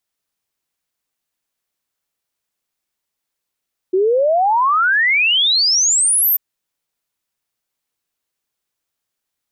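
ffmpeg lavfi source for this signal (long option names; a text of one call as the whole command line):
ffmpeg -f lavfi -i "aevalsrc='0.266*clip(min(t,2.44-t)/0.01,0,1)*sin(2*PI*360*2.44/log(14000/360)*(exp(log(14000/360)*t/2.44)-1))':duration=2.44:sample_rate=44100" out.wav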